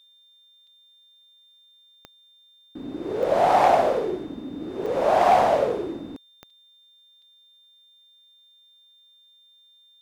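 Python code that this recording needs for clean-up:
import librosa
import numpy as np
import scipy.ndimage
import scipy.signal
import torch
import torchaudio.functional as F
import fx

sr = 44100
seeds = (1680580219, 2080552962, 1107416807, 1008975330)

y = fx.fix_declip(x, sr, threshold_db=-10.5)
y = fx.fix_declick_ar(y, sr, threshold=10.0)
y = fx.notch(y, sr, hz=3600.0, q=30.0)
y = fx.fix_interpolate(y, sr, at_s=(0.67, 4.86, 6.5, 7.22), length_ms=4.1)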